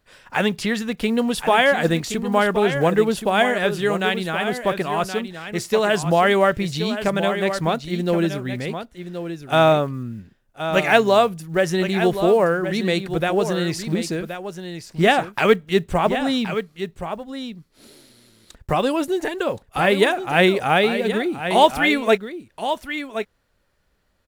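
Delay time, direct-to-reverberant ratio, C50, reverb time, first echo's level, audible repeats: 1073 ms, no reverb, no reverb, no reverb, -9.5 dB, 1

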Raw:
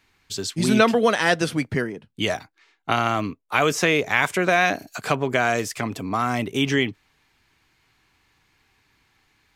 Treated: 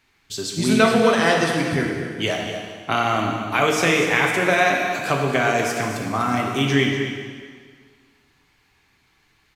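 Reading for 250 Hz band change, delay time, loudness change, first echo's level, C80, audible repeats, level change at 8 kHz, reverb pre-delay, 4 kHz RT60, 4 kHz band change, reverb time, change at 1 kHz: +2.5 dB, 243 ms, +2.0 dB, -11.0 dB, 3.0 dB, 1, +2.0 dB, 5 ms, 1.7 s, +2.5 dB, 1.8 s, +2.5 dB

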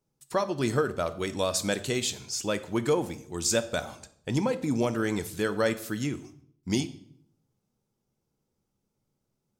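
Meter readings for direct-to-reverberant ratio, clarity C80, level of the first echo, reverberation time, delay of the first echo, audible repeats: 10.5 dB, 18.5 dB, no echo, 0.65 s, no echo, no echo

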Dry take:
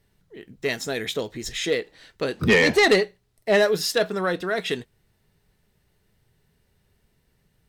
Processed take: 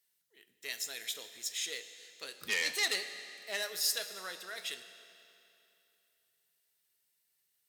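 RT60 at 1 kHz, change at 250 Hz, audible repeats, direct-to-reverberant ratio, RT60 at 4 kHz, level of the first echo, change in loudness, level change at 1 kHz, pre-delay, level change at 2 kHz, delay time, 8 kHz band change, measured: 2.9 s, -30.5 dB, no echo, 9.5 dB, 2.6 s, no echo, -13.0 dB, -19.0 dB, 16 ms, -13.0 dB, no echo, -2.5 dB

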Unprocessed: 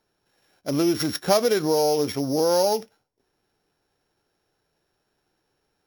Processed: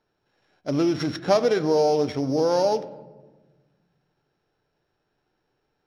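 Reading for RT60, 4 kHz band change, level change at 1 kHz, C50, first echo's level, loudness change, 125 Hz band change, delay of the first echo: 1.3 s, -5.0 dB, 0.0 dB, 15.5 dB, no echo, -0.5 dB, +1.5 dB, no echo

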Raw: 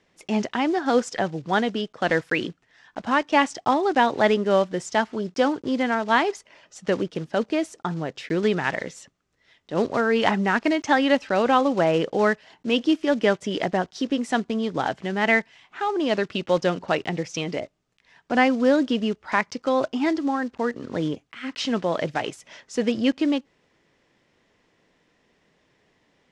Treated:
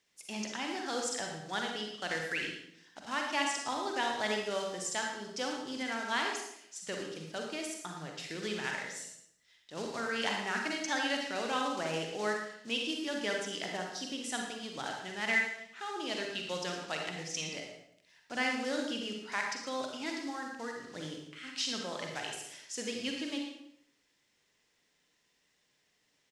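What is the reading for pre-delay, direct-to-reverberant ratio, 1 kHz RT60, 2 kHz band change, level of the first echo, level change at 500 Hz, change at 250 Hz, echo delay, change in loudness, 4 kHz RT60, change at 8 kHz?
38 ms, 0.5 dB, 0.65 s, -8.5 dB, -11.5 dB, -15.5 dB, -16.0 dB, 114 ms, -12.0 dB, 0.65 s, +1.5 dB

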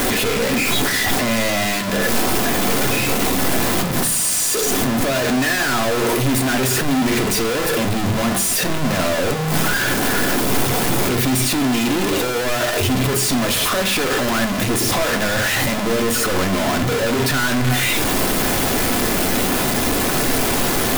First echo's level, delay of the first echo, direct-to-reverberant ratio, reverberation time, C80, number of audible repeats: no echo, no echo, 5.5 dB, 0.65 s, 17.5 dB, no echo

